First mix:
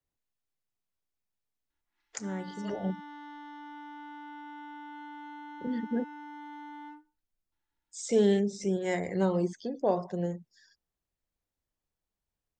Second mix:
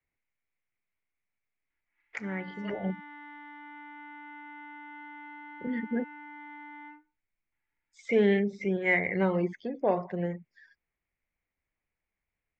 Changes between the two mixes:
background -4.0 dB; master: add resonant low-pass 2.2 kHz, resonance Q 6.2

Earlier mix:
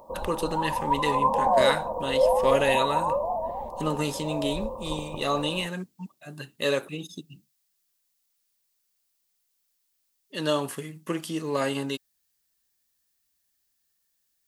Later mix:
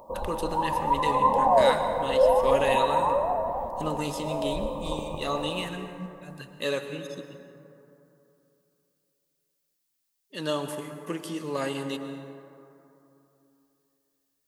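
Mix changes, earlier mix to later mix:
speech -5.0 dB; reverb: on, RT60 3.0 s

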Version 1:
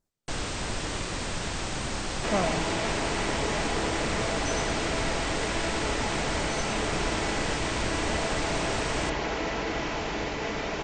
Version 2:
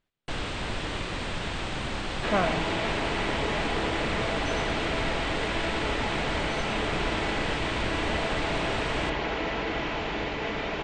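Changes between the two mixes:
speech: add peaking EQ 2.6 kHz +14 dB 1.6 oct; master: add resonant high shelf 4.5 kHz -8 dB, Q 1.5

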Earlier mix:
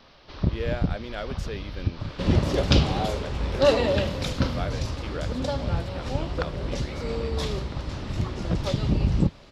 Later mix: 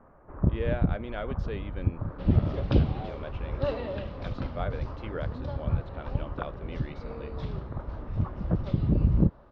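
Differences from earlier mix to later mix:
first sound: add inverse Chebyshev low-pass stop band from 3.7 kHz, stop band 50 dB; second sound -10.5 dB; master: add distance through air 290 m

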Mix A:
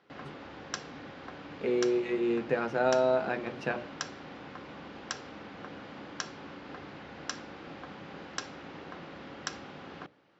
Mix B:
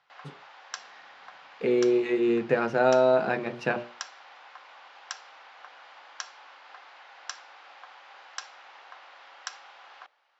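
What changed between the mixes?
speech +5.0 dB; background: add Chebyshev high-pass 780 Hz, order 3

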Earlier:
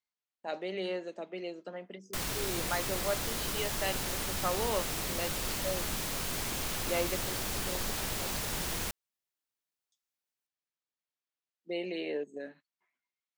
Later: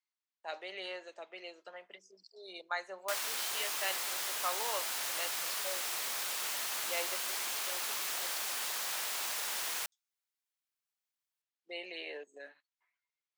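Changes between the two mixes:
background: entry +0.95 s; master: add high-pass 830 Hz 12 dB/octave

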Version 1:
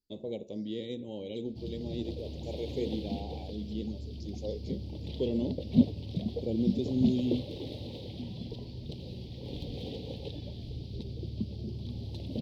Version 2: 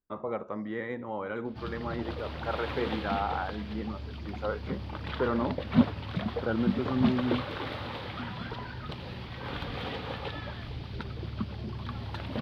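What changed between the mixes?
speech: add resonant high shelf 2.1 kHz -13 dB, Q 1.5; master: remove Chebyshev band-stop 430–4400 Hz, order 2

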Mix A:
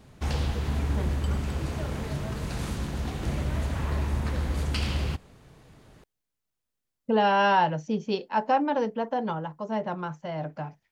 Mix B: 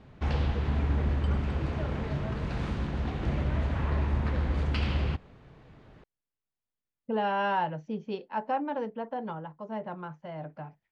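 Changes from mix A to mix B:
speech -6.5 dB; master: add low-pass 3 kHz 12 dB/octave

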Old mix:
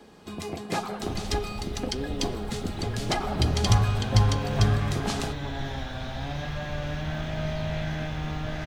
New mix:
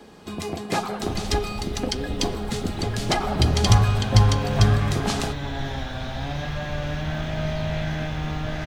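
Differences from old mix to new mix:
first sound +4.5 dB; second sound +3.5 dB

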